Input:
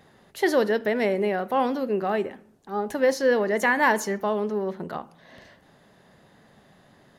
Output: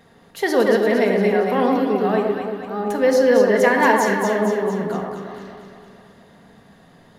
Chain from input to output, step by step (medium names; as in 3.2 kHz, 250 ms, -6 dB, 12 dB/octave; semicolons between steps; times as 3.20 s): on a send: echo whose repeats swap between lows and highs 115 ms, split 1.3 kHz, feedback 74%, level -2.5 dB; on the sum: simulated room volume 2600 m³, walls furnished, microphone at 1.7 m; trim +2 dB